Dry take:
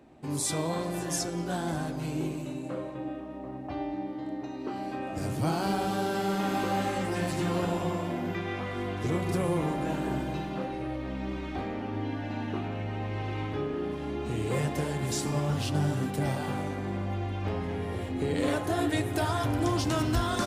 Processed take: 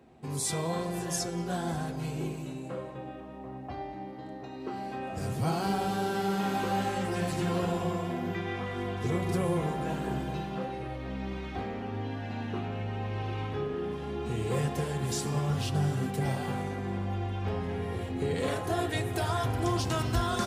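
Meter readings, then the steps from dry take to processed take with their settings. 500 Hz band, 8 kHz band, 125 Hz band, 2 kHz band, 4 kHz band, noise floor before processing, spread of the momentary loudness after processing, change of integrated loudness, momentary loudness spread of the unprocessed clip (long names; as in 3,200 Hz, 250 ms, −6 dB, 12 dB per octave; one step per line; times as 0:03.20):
−1.0 dB, −1.0 dB, 0.0 dB, −1.5 dB, −1.0 dB, −38 dBFS, 9 LU, −1.0 dB, 8 LU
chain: notch comb filter 300 Hz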